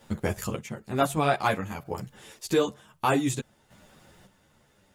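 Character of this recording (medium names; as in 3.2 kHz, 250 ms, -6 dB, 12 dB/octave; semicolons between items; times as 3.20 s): a quantiser's noise floor 12-bit, dither none; chopped level 0.54 Hz, depth 60%, duty 30%; a shimmering, thickened sound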